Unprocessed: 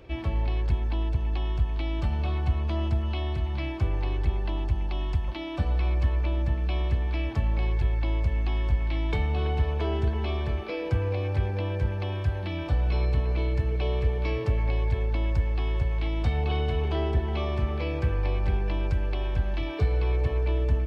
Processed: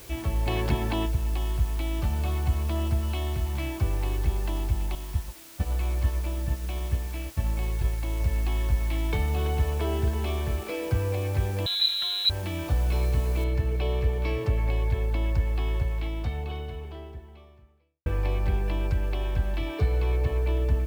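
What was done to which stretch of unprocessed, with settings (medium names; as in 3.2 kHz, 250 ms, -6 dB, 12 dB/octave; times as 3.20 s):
0.46–1.05 s: spectral peaks clipped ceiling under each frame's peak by 15 dB
4.95–8.20 s: expander -22 dBFS
11.66–12.30 s: frequency inversion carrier 4 kHz
13.44 s: noise floor step -48 dB -59 dB
15.73–18.06 s: fade out quadratic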